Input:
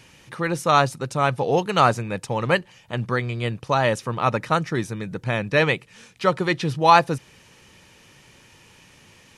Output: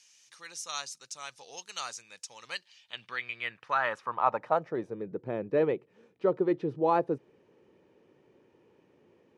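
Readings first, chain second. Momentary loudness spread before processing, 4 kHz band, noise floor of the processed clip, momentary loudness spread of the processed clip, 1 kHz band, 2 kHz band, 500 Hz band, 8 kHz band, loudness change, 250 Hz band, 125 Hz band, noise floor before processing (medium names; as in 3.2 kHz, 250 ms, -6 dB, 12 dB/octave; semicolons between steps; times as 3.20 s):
11 LU, -11.5 dB, -67 dBFS, 16 LU, -11.5 dB, -12.0 dB, -8.0 dB, -4.5 dB, -10.0 dB, -9.0 dB, -19.5 dB, -53 dBFS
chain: band-pass sweep 6.1 kHz -> 390 Hz, 2.38–5.08 s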